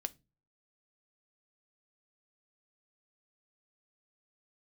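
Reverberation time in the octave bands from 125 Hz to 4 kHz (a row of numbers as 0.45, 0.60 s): 0.55, 0.45, 0.30, 0.25, 0.20, 0.20 s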